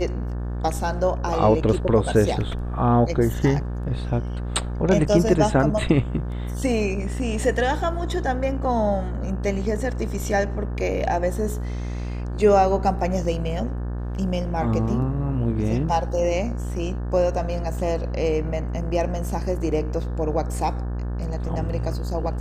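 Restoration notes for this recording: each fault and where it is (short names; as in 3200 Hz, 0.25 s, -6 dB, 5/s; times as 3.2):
buzz 60 Hz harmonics 30 -27 dBFS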